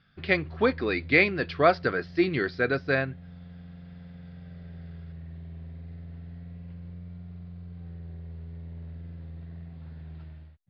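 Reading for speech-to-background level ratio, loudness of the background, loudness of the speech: 18.0 dB, −43.5 LKFS, −25.5 LKFS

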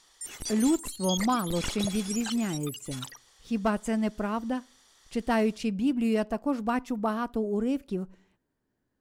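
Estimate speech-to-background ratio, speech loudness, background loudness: 6.5 dB, −29.5 LKFS, −36.0 LKFS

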